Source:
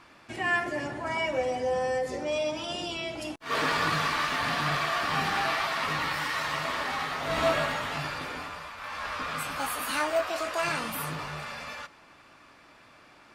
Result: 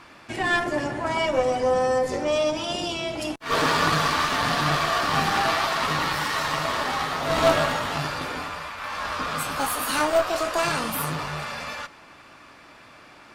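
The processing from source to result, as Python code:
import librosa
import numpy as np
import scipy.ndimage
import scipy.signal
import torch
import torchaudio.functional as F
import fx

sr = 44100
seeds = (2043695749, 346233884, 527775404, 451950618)

y = fx.cheby_harmonics(x, sr, harmonics=(4, 6, 8), levels_db=(-11, -17, -25), full_scale_db=-13.0)
y = fx.dynamic_eq(y, sr, hz=2200.0, q=1.4, threshold_db=-41.0, ratio=4.0, max_db=-5)
y = F.gain(torch.from_numpy(y), 6.5).numpy()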